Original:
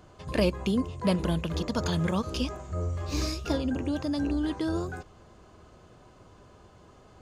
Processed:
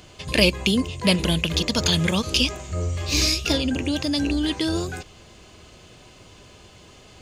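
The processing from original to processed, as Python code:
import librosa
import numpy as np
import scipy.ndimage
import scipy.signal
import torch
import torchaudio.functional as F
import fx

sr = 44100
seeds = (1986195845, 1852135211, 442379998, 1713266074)

y = fx.high_shelf_res(x, sr, hz=1800.0, db=9.5, q=1.5)
y = F.gain(torch.from_numpy(y), 5.0).numpy()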